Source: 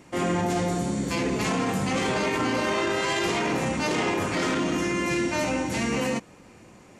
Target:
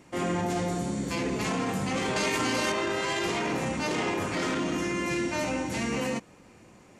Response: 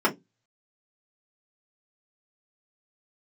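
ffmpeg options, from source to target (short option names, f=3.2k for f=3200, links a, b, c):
-filter_complex "[0:a]asettb=1/sr,asplit=3[a][b][c];[a]atrim=end=2.164[d];[b]atrim=start=2.16:end=2.72,asetpts=PTS-STARTPTS,afade=t=in:d=0.004:c=qsin,afade=t=out:st=0.556:d=0.004:c=qsin,highshelf=f=3k:g=10.5[e];[c]atrim=start=2.716[f];[d][e]acrossfade=d=0.004:c1=hsin:c2=qsin[g];[g][f]acrossfade=d=0.004:c1=qsin:c2=hsin,volume=-3.5dB"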